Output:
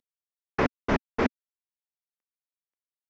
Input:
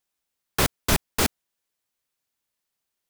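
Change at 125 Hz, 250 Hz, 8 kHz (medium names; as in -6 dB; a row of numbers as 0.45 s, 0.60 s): -5.5 dB, +1.5 dB, -26.5 dB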